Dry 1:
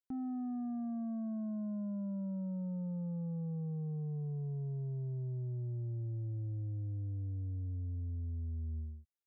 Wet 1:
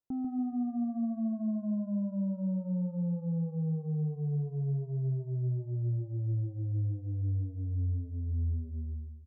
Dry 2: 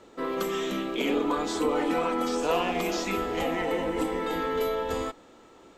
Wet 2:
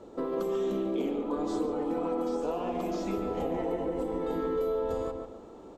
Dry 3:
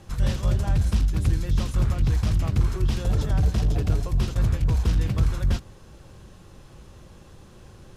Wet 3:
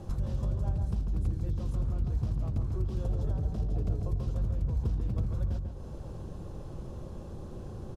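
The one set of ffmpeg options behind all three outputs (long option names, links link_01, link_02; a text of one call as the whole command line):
ffmpeg -i in.wav -filter_complex "[0:a]firequalizer=gain_entry='entry(570,0);entry(1900,-15);entry(4200,-11)':delay=0.05:min_phase=1,acompressor=threshold=-35dB:ratio=6,asplit=2[link_01][link_02];[link_02]adelay=143,lowpass=frequency=2000:poles=1,volume=-4.5dB,asplit=2[link_03][link_04];[link_04]adelay=143,lowpass=frequency=2000:poles=1,volume=0.36,asplit=2[link_05][link_06];[link_06]adelay=143,lowpass=frequency=2000:poles=1,volume=0.36,asplit=2[link_07][link_08];[link_08]adelay=143,lowpass=frequency=2000:poles=1,volume=0.36,asplit=2[link_09][link_10];[link_10]adelay=143,lowpass=frequency=2000:poles=1,volume=0.36[link_11];[link_01][link_03][link_05][link_07][link_09][link_11]amix=inputs=6:normalize=0,volume=5dB" out.wav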